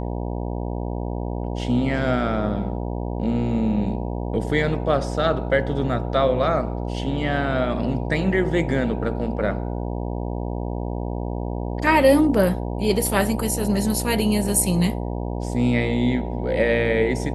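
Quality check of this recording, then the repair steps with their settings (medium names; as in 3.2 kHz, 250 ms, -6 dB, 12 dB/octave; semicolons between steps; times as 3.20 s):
buzz 60 Hz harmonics 16 -27 dBFS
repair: de-hum 60 Hz, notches 16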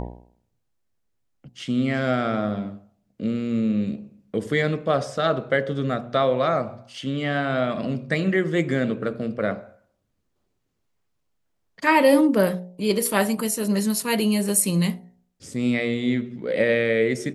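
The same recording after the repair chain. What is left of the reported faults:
nothing left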